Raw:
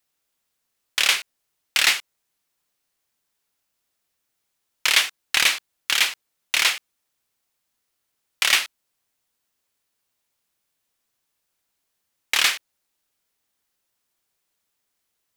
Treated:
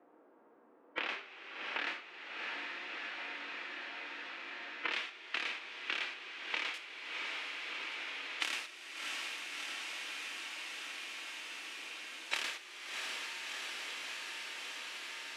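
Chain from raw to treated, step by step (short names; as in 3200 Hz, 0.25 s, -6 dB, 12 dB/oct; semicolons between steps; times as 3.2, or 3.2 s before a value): rattling part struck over -52 dBFS, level -10 dBFS; LPF 1500 Hz 12 dB/oct, from 4.92 s 2900 Hz, from 6.74 s 10000 Hz; low-pass opened by the level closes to 1000 Hz, open at -21.5 dBFS; harmonic-percussive split percussive -6 dB; compressor, threshold -22 dBFS, peak gain reduction 6 dB; ladder high-pass 270 Hz, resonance 50%; diffused feedback echo 0.678 s, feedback 48%, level -15.5 dB; two-slope reverb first 0.32 s, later 4.5 s, from -18 dB, DRR 6 dB; three-band squash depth 100%; gain +5.5 dB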